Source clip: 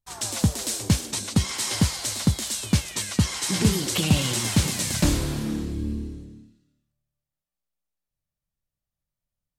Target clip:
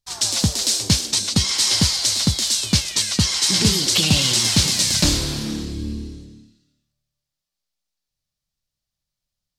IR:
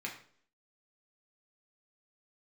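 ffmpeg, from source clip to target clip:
-af "equalizer=frequency=4700:width=0.93:gain=12.5,volume=1dB"

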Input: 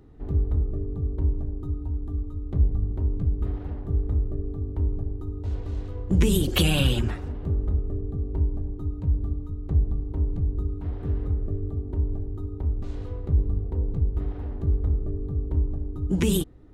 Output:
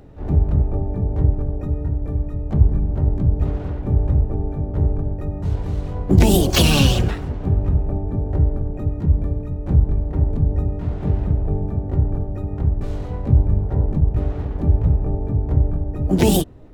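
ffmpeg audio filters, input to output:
ffmpeg -i in.wav -filter_complex "[0:a]asplit=3[link_01][link_02][link_03];[link_02]asetrate=66075,aresample=44100,atempo=0.66742,volume=-7dB[link_04];[link_03]asetrate=88200,aresample=44100,atempo=0.5,volume=-8dB[link_05];[link_01][link_04][link_05]amix=inputs=3:normalize=0,volume=5.5dB" out.wav

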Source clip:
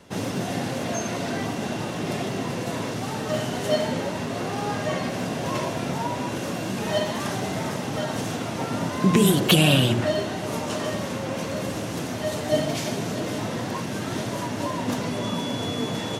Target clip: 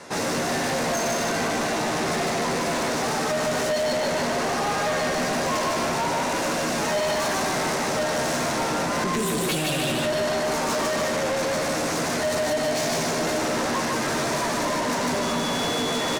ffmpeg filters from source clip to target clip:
ffmpeg -i in.wav -filter_complex "[0:a]equalizer=frequency=3100:width=3:gain=-10.5,asplit=2[link_01][link_02];[link_02]adelay=13,volume=-6.5dB[link_03];[link_01][link_03]amix=inputs=2:normalize=0,asplit=2[link_04][link_05];[link_05]aecho=0:1:150|300|450|600|750|900:0.708|0.319|0.143|0.0645|0.029|0.0131[link_06];[link_04][link_06]amix=inputs=2:normalize=0,alimiter=limit=-15dB:level=0:latency=1:release=108,lowpass=10000,asplit=2[link_07][link_08];[link_08]highpass=frequency=720:poles=1,volume=23dB,asoftclip=type=tanh:threshold=-13.5dB[link_09];[link_07][link_09]amix=inputs=2:normalize=0,lowpass=frequency=4400:poles=1,volume=-6dB,highshelf=frequency=5900:gain=8,volume=-4.5dB" out.wav

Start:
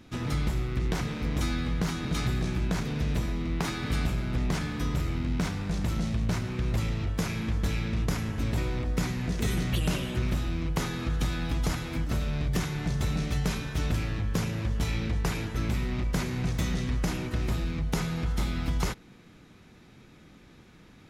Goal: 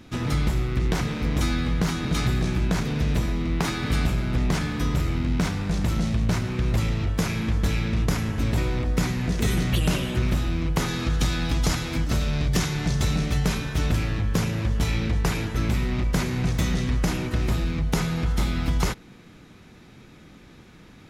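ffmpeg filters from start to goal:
ffmpeg -i in.wav -filter_complex "[0:a]asettb=1/sr,asplit=3[link_01][link_02][link_03];[link_01]atrim=end=10.884[link_04];[link_02]atrim=start=10.88:end=13.17,asetpts=PTS-STARTPTS,afade=type=in:duration=0.004:curve=qsin,afade=type=out:start_time=2.286:duration=0.004:curve=qsin,equalizer=frequency=5500:width_type=o:width=1.6:gain=5[link_05];[link_03]atrim=start=13.166[link_06];[link_04][link_05]acrossfade=duration=0.004:curve1=hsin:curve2=qsin[link_07];[link_07][link_06]acrossfade=duration=0.004:curve1=qsin:curve2=hsin,volume=5dB" out.wav

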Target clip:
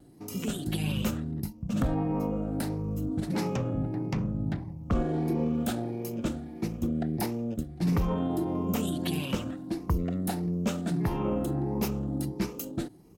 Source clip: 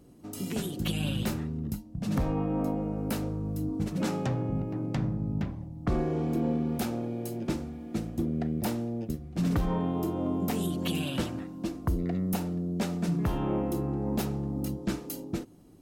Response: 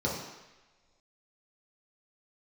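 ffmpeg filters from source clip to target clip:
-af "afftfilt=real='re*pow(10,7/40*sin(2*PI*(0.81*log(max(b,1)*sr/1024/100)/log(2)-(1.3)*(pts-256)/sr)))':imag='im*pow(10,7/40*sin(2*PI*(0.81*log(max(b,1)*sr/1024/100)/log(2)-(1.3)*(pts-256)/sr)))':win_size=1024:overlap=0.75,atempo=1.2"

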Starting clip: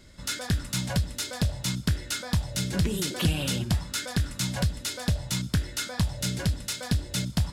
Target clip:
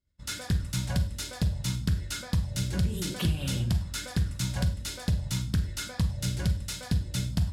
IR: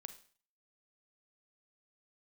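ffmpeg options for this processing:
-filter_complex "[0:a]agate=range=-33dB:threshold=-34dB:ratio=3:detection=peak,equalizer=frequency=66:width=0.62:gain=13,bandreject=frequency=49.59:width_type=h:width=4,bandreject=frequency=99.18:width_type=h:width=4,bandreject=frequency=148.77:width_type=h:width=4,bandreject=frequency=198.36:width_type=h:width=4,bandreject=frequency=247.95:width_type=h:width=4,bandreject=frequency=297.54:width_type=h:width=4,bandreject=frequency=347.13:width_type=h:width=4,bandreject=frequency=396.72:width_type=h:width=4,bandreject=frequency=446.31:width_type=h:width=4,bandreject=frequency=495.9:width_type=h:width=4,bandreject=frequency=545.49:width_type=h:width=4,bandreject=frequency=595.08:width_type=h:width=4,bandreject=frequency=644.67:width_type=h:width=4,bandreject=frequency=694.26:width_type=h:width=4,bandreject=frequency=743.85:width_type=h:width=4,bandreject=frequency=793.44:width_type=h:width=4,acompressor=threshold=-19dB:ratio=6[link_01];[1:a]atrim=start_sample=2205,afade=type=out:start_time=0.16:duration=0.01,atrim=end_sample=7497[link_02];[link_01][link_02]afir=irnorm=-1:irlink=0,volume=1.5dB"

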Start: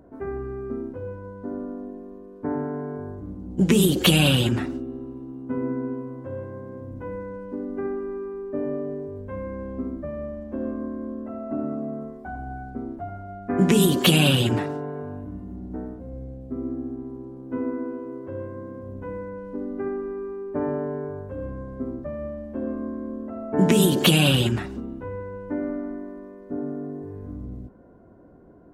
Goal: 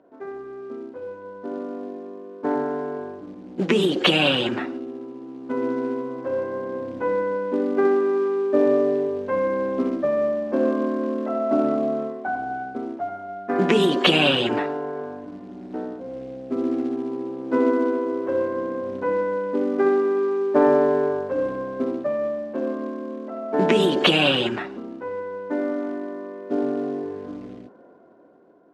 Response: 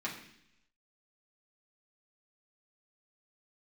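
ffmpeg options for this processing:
-af "acrusher=bits=7:mode=log:mix=0:aa=0.000001,highpass=360,lowpass=3000,dynaudnorm=framelen=390:gausssize=9:maxgain=14dB,volume=-1dB"

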